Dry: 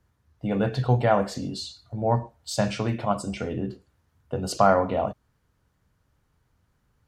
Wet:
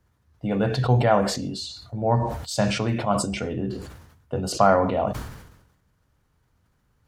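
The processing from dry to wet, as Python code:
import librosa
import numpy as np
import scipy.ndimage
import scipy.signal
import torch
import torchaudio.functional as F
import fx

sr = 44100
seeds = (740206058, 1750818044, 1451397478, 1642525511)

y = fx.sustainer(x, sr, db_per_s=59.0)
y = F.gain(torch.from_numpy(y), 1.0).numpy()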